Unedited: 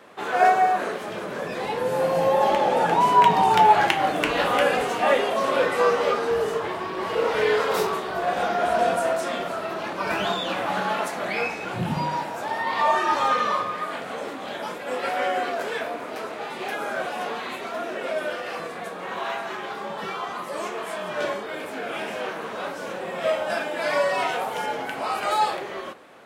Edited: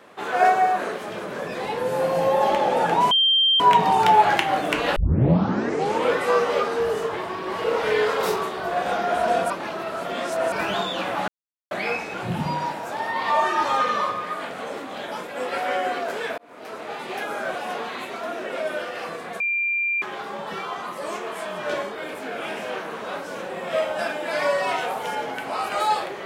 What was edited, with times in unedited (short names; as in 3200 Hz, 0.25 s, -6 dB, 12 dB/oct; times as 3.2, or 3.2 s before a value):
3.11 add tone 3160 Hz -15 dBFS 0.49 s
4.47 tape start 1.21 s
9.01–10.03 reverse
10.79–11.22 mute
15.89–16.39 fade in
18.91–19.53 bleep 2380 Hz -20.5 dBFS